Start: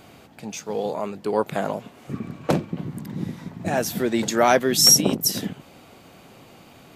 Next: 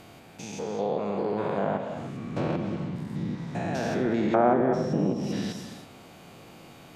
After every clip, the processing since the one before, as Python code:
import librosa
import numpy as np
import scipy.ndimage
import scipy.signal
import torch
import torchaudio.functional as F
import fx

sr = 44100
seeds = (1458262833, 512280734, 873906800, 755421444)

y = fx.spec_steps(x, sr, hold_ms=200)
y = fx.rev_gated(y, sr, seeds[0], gate_ms=350, shape='flat', drr_db=6.0)
y = fx.env_lowpass_down(y, sr, base_hz=960.0, full_db=-18.5)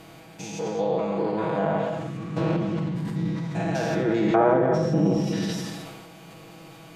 y = x + 0.9 * np.pad(x, (int(6.2 * sr / 1000.0), 0))[:len(x)]
y = fx.sustainer(y, sr, db_per_s=32.0)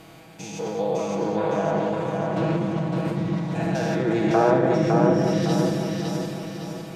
y = fx.echo_feedback(x, sr, ms=558, feedback_pct=47, wet_db=-3)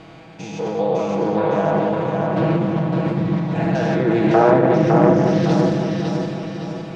y = fx.air_absorb(x, sr, metres=130.0)
y = fx.doppler_dist(y, sr, depth_ms=0.28)
y = y * librosa.db_to_amplitude(5.5)